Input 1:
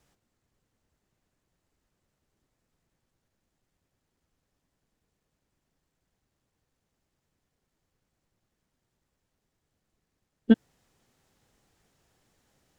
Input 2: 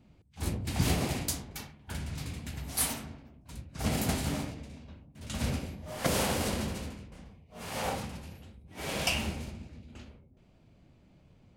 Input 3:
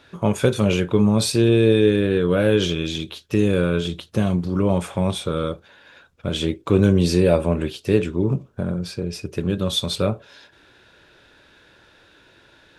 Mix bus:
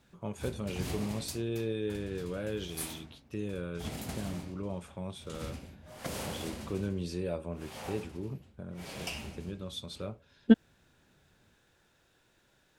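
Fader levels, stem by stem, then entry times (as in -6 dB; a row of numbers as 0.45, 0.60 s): -1.5, -9.5, -18.5 dB; 0.00, 0.00, 0.00 s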